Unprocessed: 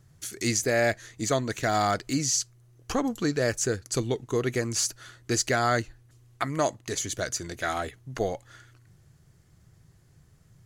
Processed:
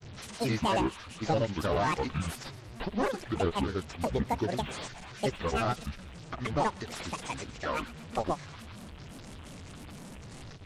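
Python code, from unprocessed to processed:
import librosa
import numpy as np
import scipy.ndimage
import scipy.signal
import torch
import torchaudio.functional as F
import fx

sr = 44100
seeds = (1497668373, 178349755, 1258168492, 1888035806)

y = fx.delta_mod(x, sr, bps=32000, step_db=-37.0)
y = fx.granulator(y, sr, seeds[0], grain_ms=100.0, per_s=26.0, spray_ms=100.0, spread_st=12)
y = fx.echo_wet_highpass(y, sr, ms=116, feedback_pct=63, hz=1800.0, wet_db=-16.5)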